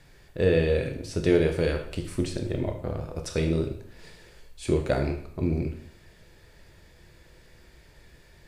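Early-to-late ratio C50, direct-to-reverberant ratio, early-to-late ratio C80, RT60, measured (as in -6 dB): 8.5 dB, 4.0 dB, 11.0 dB, 0.60 s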